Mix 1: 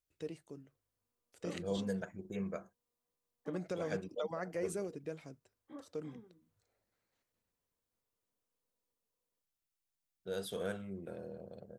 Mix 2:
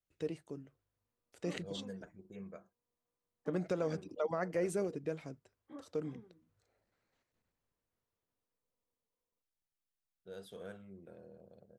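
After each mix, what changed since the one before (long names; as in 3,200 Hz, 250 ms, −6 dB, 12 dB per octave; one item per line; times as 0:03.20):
first voice +4.5 dB
second voice −9.0 dB
master: add high-shelf EQ 4,100 Hz −5.5 dB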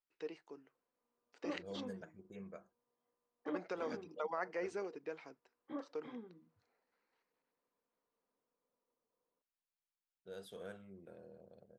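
first voice: add loudspeaker in its box 440–5,200 Hz, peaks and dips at 590 Hz −8 dB, 920 Hz +4 dB, 3,500 Hz −6 dB
background +7.5 dB
master: add low-shelf EQ 250 Hz −4.5 dB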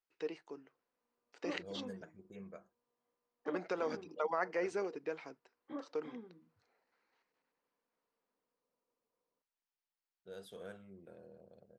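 first voice +4.5 dB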